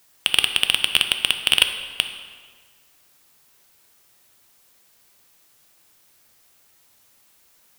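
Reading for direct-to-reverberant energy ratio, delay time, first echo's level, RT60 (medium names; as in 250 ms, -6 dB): 6.5 dB, no echo, no echo, 1.7 s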